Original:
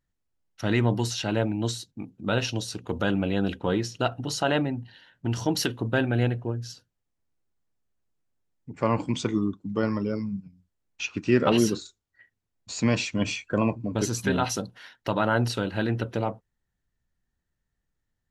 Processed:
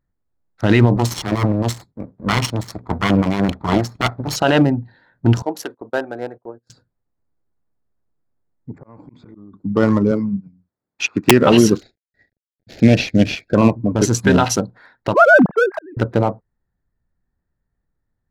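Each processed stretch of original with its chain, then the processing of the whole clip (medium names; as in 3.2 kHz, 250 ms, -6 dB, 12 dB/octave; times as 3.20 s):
0.96–4.36 s: comb filter that takes the minimum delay 0.93 ms + high-pass 52 Hz
5.42–6.70 s: high-pass 560 Hz + peaking EQ 3.2 kHz -12 dB 2.6 oct + gate -50 dBFS, range -22 dB
8.78–9.54 s: level-controlled noise filter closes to 610 Hz, open at -19 dBFS + slow attack 321 ms + compression 16:1, threshold -42 dBFS
10.11–11.31 s: high-pass 130 Hz + integer overflow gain 14.5 dB
11.81–13.55 s: CVSD coder 32 kbps + Butterworth band-stop 1.1 kHz, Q 1.1
15.14–15.97 s: formants replaced by sine waves + steep low-pass 2.1 kHz + slow attack 797 ms
whole clip: local Wiener filter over 15 samples; loudness maximiser +15.5 dB; upward expansion 1.5:1, over -25 dBFS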